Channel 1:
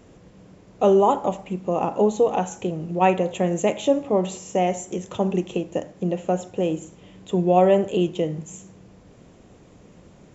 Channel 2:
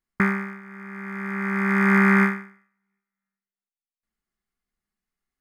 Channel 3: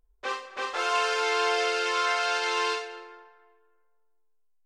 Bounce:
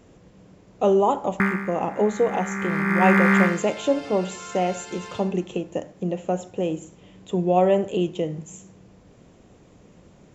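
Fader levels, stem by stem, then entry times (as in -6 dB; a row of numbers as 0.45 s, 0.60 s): -2.0 dB, -0.5 dB, -13.5 dB; 0.00 s, 1.20 s, 2.45 s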